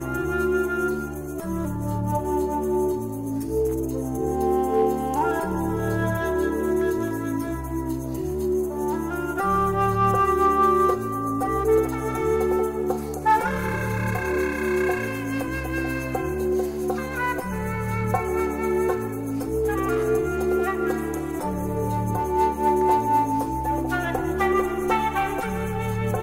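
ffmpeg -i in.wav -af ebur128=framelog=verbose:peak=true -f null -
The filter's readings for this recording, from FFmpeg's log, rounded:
Integrated loudness:
  I:         -24.2 LUFS
  Threshold: -34.2 LUFS
Loudness range:
  LRA:         4.2 LU
  Threshold: -44.1 LUFS
  LRA low:   -25.9 LUFS
  LRA high:  -21.7 LUFS
True peak:
  Peak:      -10.9 dBFS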